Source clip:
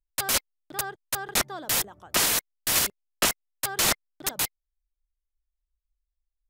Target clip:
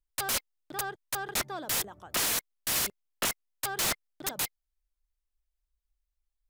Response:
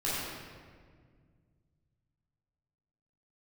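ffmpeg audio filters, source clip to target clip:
-af "asoftclip=type=tanh:threshold=-25dB"

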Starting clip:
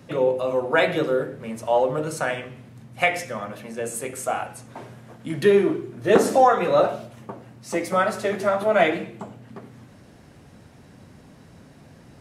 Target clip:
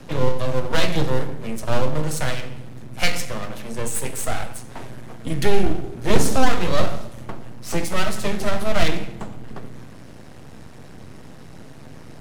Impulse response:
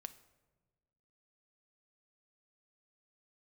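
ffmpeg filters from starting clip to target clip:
-filter_complex "[0:a]aeval=exprs='max(val(0),0)':c=same,acrossover=split=240|3000[a][b][c];[b]acompressor=threshold=-51dB:ratio=1.5[d];[a][d][c]amix=inputs=3:normalize=0,asplit=2[e][f];[1:a]atrim=start_sample=2205,asetrate=32193,aresample=44100[g];[f][g]afir=irnorm=-1:irlink=0,volume=12dB[h];[e][h]amix=inputs=2:normalize=0,volume=-1.5dB"

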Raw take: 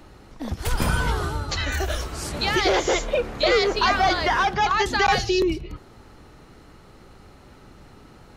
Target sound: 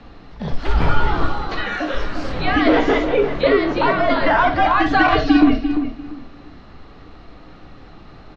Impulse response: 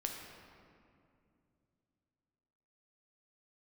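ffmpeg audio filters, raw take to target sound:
-filter_complex "[0:a]lowpass=f=4.7k:w=0.5412,lowpass=f=4.7k:w=1.3066,acrossover=split=2700[a][b];[b]acompressor=threshold=-45dB:ratio=4:attack=1:release=60[c];[a][c]amix=inputs=2:normalize=0,asettb=1/sr,asplit=3[d][e][f];[d]atrim=end=1.264[g];[e]atrim=start=1.26:end=1.94,asetpts=PTS-STARTPTS,afade=t=in:d=0.004:c=qsin,afade=t=out:st=0.676:d=0.004:c=qsin,highpass=350[h];[f]atrim=start=1.936[i];[g][h]acrossfade=d=0.004:c1=hsin:c2=qsin[j];[j][i]acrossfade=d=0.004:c1=qsin:c2=hsin,asettb=1/sr,asplit=3[k][l][m];[k]atrim=end=3.474[n];[l]atrim=start=3.47:end=4.1,asetpts=PTS-STARTPTS,afade=t=in:d=0.004:c=qsin,afade=t=out:st=0.626:d=0.004:c=qsin,acompressor=threshold=-21dB:ratio=2.5[o];[m]atrim=start=4.096[p];[n][o]acrossfade=d=0.004:c1=hsin:c2=qsin[q];[q][p]acrossfade=d=0.004:c1=qsin:c2=hsin,asettb=1/sr,asplit=3[r][s][t];[r]atrim=end=4.834[u];[s]atrim=start=4.83:end=5.37,asetpts=PTS-STARTPTS,afade=t=in:d=0.004:c=qsin,afade=t=out:st=0.536:d=0.004:c=qsin,aecho=1:1:5.7:0.81,atrim=end_sample=23814[v];[t]atrim=start=5.366[w];[u][v]acrossfade=d=0.004:c1=hsin:c2=qsin[x];[x][w]acrossfade=d=0.004:c1=qsin:c2=hsin,afreqshift=-76,asplit=2[y][z];[z]adelay=345,lowpass=f=2k:p=1,volume=-8dB,asplit=2[aa][ab];[ab]adelay=345,lowpass=f=2k:p=1,volume=0.22,asplit=2[ac][ad];[ad]adelay=345,lowpass=f=2k:p=1,volume=0.22[ae];[y][aa][ac][ae]amix=inputs=4:normalize=0[af];[1:a]atrim=start_sample=2205,atrim=end_sample=3087[ag];[af][ag]afir=irnorm=-1:irlink=0,volume=6.5dB"

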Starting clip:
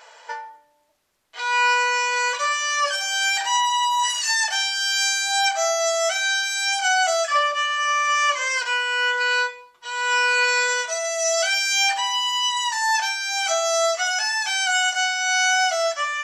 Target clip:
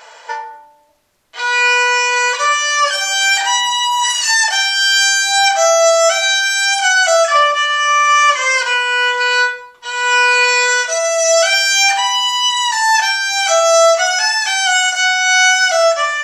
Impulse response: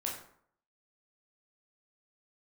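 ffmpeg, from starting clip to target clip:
-filter_complex "[0:a]asplit=2[a][b];[1:a]atrim=start_sample=2205,lowshelf=f=300:g=11[c];[b][c]afir=irnorm=-1:irlink=0,volume=-5.5dB[d];[a][d]amix=inputs=2:normalize=0,volume=4.5dB"

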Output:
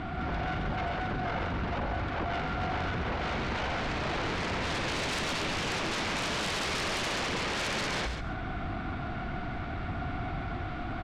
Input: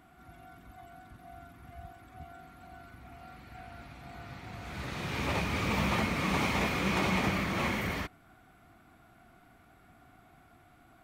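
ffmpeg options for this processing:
-filter_complex "[0:a]lowpass=f=4.5k:w=0.5412,lowpass=f=4.5k:w=1.3066,lowshelf=f=130:g=9.5,bandreject=f=60:t=h:w=6,bandreject=f=120:t=h:w=6,acompressor=threshold=-41dB:ratio=12,aeval=exprs='0.0224*sin(PI/2*5.62*val(0)/0.0224)':c=same,asplit=2[a][b];[b]aecho=0:1:139|278|417:0.422|0.0717|0.0122[c];[a][c]amix=inputs=2:normalize=0,volume=3.5dB"

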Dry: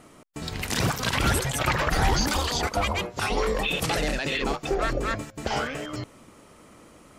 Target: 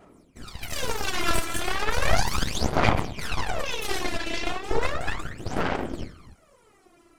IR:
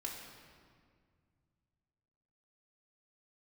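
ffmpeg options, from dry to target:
-filter_complex "[1:a]atrim=start_sample=2205,afade=t=out:st=0.37:d=0.01,atrim=end_sample=16758[a];[0:a][a]afir=irnorm=-1:irlink=0,afftfilt=real='hypot(re,im)*cos(2*PI*random(0))':imag='hypot(re,im)*sin(2*PI*random(1))':win_size=512:overlap=0.75,aeval=exprs='0.158*(cos(1*acos(clip(val(0)/0.158,-1,1)))-cos(1*PI/2))+0.0282*(cos(3*acos(clip(val(0)/0.158,-1,1)))-cos(3*PI/2))+0.0562*(cos(4*acos(clip(val(0)/0.158,-1,1)))-cos(4*PI/2))':c=same,aphaser=in_gain=1:out_gain=1:delay=3:decay=0.74:speed=0.35:type=sinusoidal,volume=3dB"

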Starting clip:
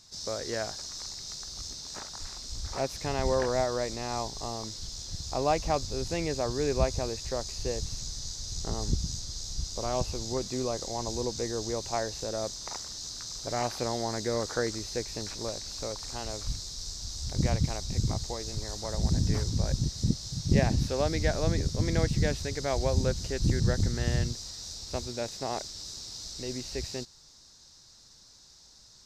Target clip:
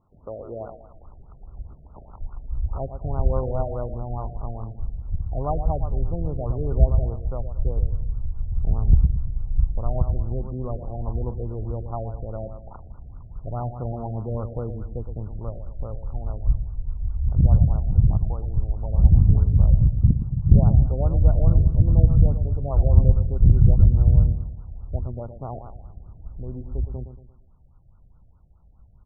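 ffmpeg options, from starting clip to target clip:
-af "asubboost=boost=6:cutoff=130,aecho=1:1:115|230|345|460:0.335|0.137|0.0563|0.0231,afftfilt=real='re*lt(b*sr/1024,730*pow(1500/730,0.5+0.5*sin(2*PI*4.8*pts/sr)))':imag='im*lt(b*sr/1024,730*pow(1500/730,0.5+0.5*sin(2*PI*4.8*pts/sr)))':win_size=1024:overlap=0.75"

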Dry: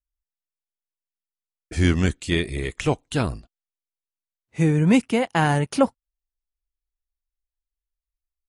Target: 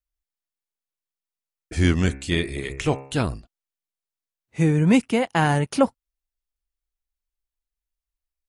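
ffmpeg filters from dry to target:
-filter_complex "[0:a]asettb=1/sr,asplit=3[a][b][c];[a]atrim=end=2.034[d];[b]atrim=start=2.03:end=3.18,asetpts=PTS-STARTPTS,afade=t=in:d=0.004:c=qsin,afade=t=out:st=1.146:d=0.004:c=qsin,bandreject=f=67.76:t=h:w=4,bandreject=f=135.52:t=h:w=4,bandreject=f=203.28:t=h:w=4,bandreject=f=271.04:t=h:w=4,bandreject=f=338.8:t=h:w=4,bandreject=f=406.56:t=h:w=4,bandreject=f=474.32:t=h:w=4,bandreject=f=542.08:t=h:w=4,bandreject=f=609.84:t=h:w=4,bandreject=f=677.6:t=h:w=4,bandreject=f=745.36:t=h:w=4,bandreject=f=813.12:t=h:w=4,bandreject=f=880.88:t=h:w=4,bandreject=f=948.64:t=h:w=4,bandreject=f=1.0164k:t=h:w=4,bandreject=f=1.08416k:t=h:w=4,bandreject=f=1.15192k:t=h:w=4,bandreject=f=1.21968k:t=h:w=4,bandreject=f=1.28744k:t=h:w=4,bandreject=f=1.3552k:t=h:w=4,bandreject=f=1.42296k:t=h:w=4,bandreject=f=1.49072k:t=h:w=4,bandreject=f=1.55848k:t=h:w=4,bandreject=f=1.62624k:t=h:w=4,bandreject=f=1.694k:t=h:w=4,bandreject=f=1.76176k:t=h:w=4,bandreject=f=1.82952k:t=h:w=4,bandreject=f=1.89728k:t=h:w=4,bandreject=f=1.96504k:t=h:w=4,bandreject=f=2.0328k:t=h:w=4,bandreject=f=2.10056k:t=h:w=4,bandreject=f=2.16832k:t=h:w=4,bandreject=f=2.23608k:t=h:w=4,bandreject=f=2.30384k:t=h:w=4,bandreject=f=2.3716k:t=h:w=4,bandreject=f=2.43936k:t=h:w=4,bandreject=f=2.50712k:t=h:w=4,bandreject=f=2.57488k:t=h:w=4,bandreject=f=2.64264k:t=h:w=4,bandreject=f=2.7104k:t=h:w=4[e];[c]atrim=start=3.176[f];[d][e]acrossfade=d=0.004:c1=hsin:c2=qsin[g];[g][f]acrossfade=d=0.004:c1=qsin:c2=hsin"

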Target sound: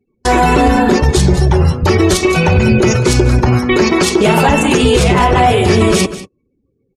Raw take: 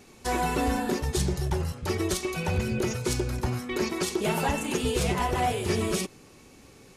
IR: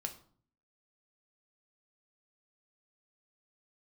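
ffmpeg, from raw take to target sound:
-af "highshelf=f=7k:g=-6,afftdn=nr=33:nf=-47,aecho=1:1:194:0.133,agate=range=-28dB:threshold=-47dB:ratio=16:detection=peak,alimiter=level_in=21dB:limit=-1dB:release=50:level=0:latency=1,volume=-1dB"

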